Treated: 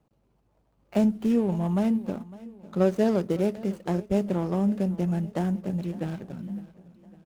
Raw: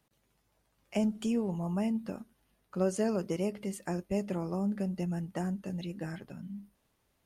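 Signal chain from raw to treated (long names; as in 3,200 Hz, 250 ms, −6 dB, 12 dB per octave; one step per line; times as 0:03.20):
running median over 25 samples
repeating echo 556 ms, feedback 50%, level −19 dB
level +7.5 dB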